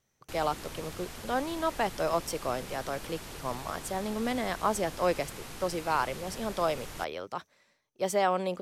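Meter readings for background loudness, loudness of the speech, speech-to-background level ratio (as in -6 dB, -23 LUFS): -43.0 LUFS, -32.5 LUFS, 10.5 dB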